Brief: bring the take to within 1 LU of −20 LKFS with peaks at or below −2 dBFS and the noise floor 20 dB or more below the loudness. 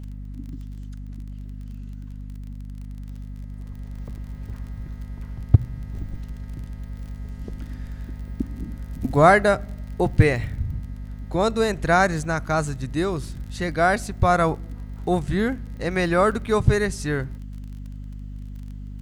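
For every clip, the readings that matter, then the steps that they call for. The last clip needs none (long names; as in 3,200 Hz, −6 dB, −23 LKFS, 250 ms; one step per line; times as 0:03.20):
crackle rate 28 per second; mains hum 50 Hz; hum harmonics up to 250 Hz; level of the hum −32 dBFS; integrated loudness −22.5 LKFS; sample peak −2.0 dBFS; target loudness −20.0 LKFS
→ click removal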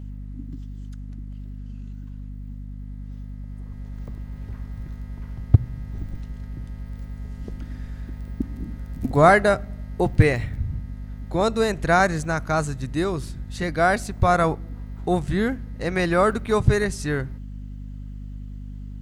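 crackle rate 0.26 per second; mains hum 50 Hz; hum harmonics up to 250 Hz; level of the hum −32 dBFS
→ hum removal 50 Hz, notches 5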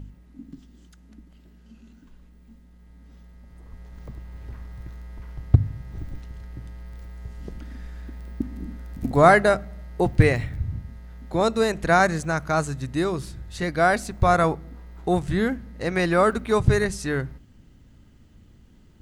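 mains hum none found; integrated loudness −22.5 LKFS; sample peak −2.5 dBFS; target loudness −20.0 LKFS
→ level +2.5 dB
brickwall limiter −2 dBFS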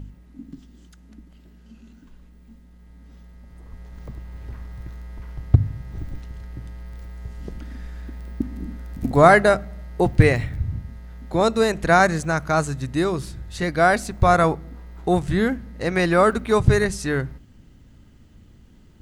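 integrated loudness −20.0 LKFS; sample peak −2.0 dBFS; background noise floor −50 dBFS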